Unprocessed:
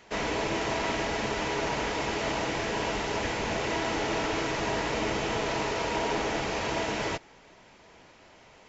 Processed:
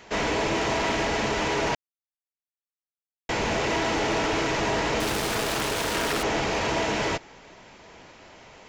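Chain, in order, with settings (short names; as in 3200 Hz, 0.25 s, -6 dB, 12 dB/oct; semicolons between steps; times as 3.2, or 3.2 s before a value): 5–6.23 self-modulated delay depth 0.53 ms; soft clip -24 dBFS, distortion -18 dB; 1.75–3.29 mute; gain +6 dB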